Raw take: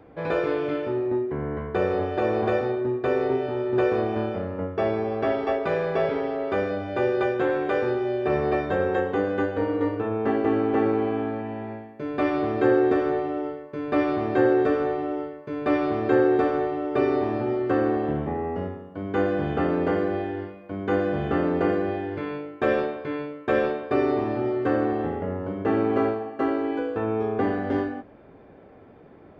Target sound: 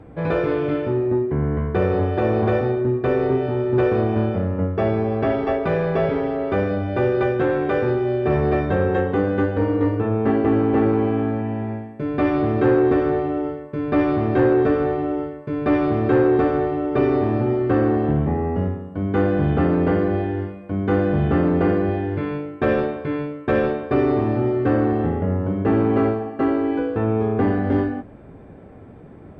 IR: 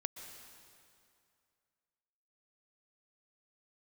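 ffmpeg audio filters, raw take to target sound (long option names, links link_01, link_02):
-af "bass=frequency=250:gain=10,treble=frequency=4000:gain=-6,asoftclip=type=tanh:threshold=-12dB,volume=3dB" -ar 32000 -c:a mp2 -b:a 192k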